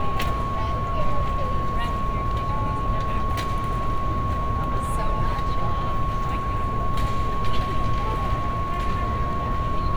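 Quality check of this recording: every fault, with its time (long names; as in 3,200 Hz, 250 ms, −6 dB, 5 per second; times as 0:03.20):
whistle 1,100 Hz −27 dBFS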